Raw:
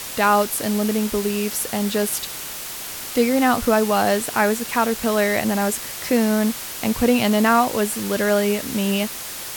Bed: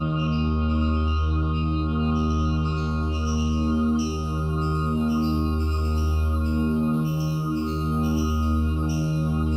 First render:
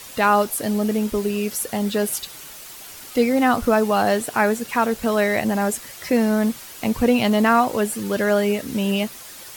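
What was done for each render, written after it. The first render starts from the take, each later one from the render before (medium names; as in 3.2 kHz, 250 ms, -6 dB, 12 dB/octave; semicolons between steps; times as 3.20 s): noise reduction 9 dB, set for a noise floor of -32 dBFS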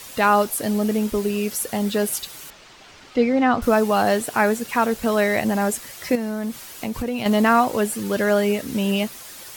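2.50–3.62 s: distance through air 150 m; 6.15–7.26 s: compression 3:1, threshold -24 dBFS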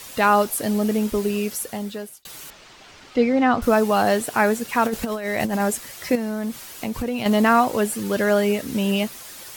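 1.36–2.25 s: fade out; 4.85–5.60 s: compressor with a negative ratio -23 dBFS, ratio -0.5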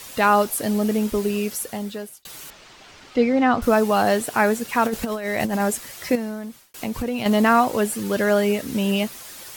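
6.13–6.74 s: fade out linear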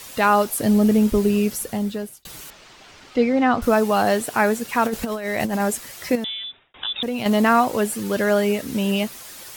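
0.60–2.42 s: bass shelf 270 Hz +9.5 dB; 6.24–7.03 s: frequency inversion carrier 3.7 kHz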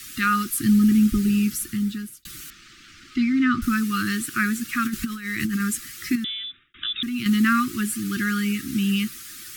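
Chebyshev band-stop 360–1200 Hz, order 5; dynamic bell 150 Hz, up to +3 dB, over -34 dBFS, Q 2.4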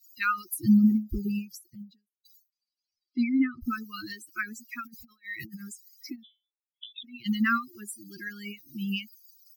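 expander on every frequency bin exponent 3; endings held to a fixed fall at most 210 dB/s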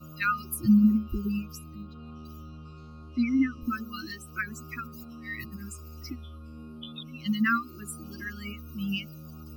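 add bed -21.5 dB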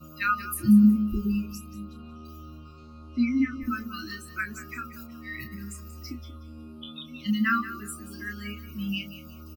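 doubling 29 ms -6.5 dB; feedback delay 183 ms, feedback 27%, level -14 dB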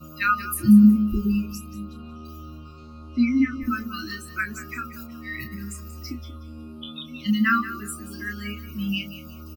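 trim +4 dB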